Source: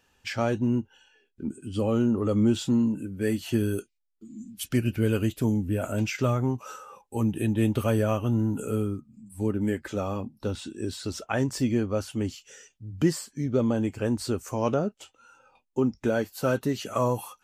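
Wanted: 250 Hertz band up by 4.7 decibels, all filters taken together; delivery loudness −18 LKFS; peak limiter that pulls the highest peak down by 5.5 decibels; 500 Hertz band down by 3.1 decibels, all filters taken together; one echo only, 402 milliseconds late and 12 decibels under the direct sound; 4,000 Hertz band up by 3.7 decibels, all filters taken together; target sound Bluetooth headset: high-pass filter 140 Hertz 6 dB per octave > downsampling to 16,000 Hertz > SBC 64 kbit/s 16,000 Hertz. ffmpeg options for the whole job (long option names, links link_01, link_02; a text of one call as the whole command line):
ffmpeg -i in.wav -af "equalizer=frequency=250:width_type=o:gain=8.5,equalizer=frequency=500:width_type=o:gain=-7,equalizer=frequency=4000:width_type=o:gain=5,alimiter=limit=-13.5dB:level=0:latency=1,highpass=frequency=140:poles=1,aecho=1:1:402:0.251,aresample=16000,aresample=44100,volume=8dB" -ar 16000 -c:a sbc -b:a 64k out.sbc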